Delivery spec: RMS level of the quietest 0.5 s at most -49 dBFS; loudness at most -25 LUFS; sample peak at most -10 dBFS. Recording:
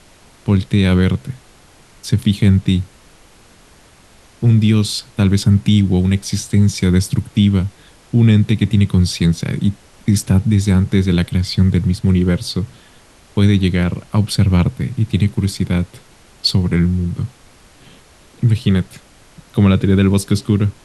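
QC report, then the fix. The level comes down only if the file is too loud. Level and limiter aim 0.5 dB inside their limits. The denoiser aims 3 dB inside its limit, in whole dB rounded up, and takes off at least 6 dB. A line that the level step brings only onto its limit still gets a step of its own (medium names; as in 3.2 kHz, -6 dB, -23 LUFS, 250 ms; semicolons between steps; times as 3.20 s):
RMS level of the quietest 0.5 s -47 dBFS: fail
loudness -16.0 LUFS: fail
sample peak -3.0 dBFS: fail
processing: trim -9.5 dB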